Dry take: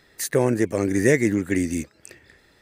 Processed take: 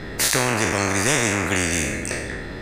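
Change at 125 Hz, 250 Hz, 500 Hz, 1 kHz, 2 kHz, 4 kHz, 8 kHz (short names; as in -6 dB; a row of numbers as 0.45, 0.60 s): +1.0, -3.5, -3.0, +10.0, +7.5, +15.5, +11.0 dB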